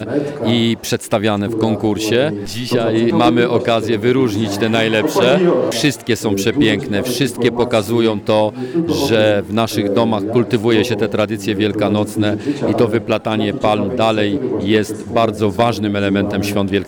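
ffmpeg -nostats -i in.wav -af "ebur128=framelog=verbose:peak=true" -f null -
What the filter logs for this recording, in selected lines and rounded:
Integrated loudness:
  I:         -16.0 LUFS
  Threshold: -26.0 LUFS
Loudness range:
  LRA:         2.0 LU
  Threshold: -35.8 LUFS
  LRA low:   -16.6 LUFS
  LRA high:  -14.6 LUFS
True peak:
  Peak:       -4.0 dBFS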